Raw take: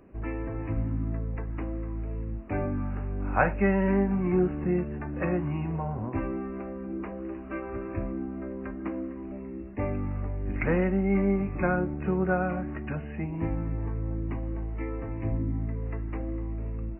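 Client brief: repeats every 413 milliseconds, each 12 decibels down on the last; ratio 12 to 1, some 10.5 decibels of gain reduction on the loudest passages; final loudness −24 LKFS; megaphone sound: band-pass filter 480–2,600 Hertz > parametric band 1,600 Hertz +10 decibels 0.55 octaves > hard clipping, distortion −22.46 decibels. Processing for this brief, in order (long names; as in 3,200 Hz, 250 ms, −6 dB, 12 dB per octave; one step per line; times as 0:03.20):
downward compressor 12 to 1, threshold −29 dBFS
band-pass filter 480–2,600 Hz
parametric band 1,600 Hz +10 dB 0.55 octaves
repeating echo 413 ms, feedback 25%, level −12 dB
hard clipping −23.5 dBFS
level +16.5 dB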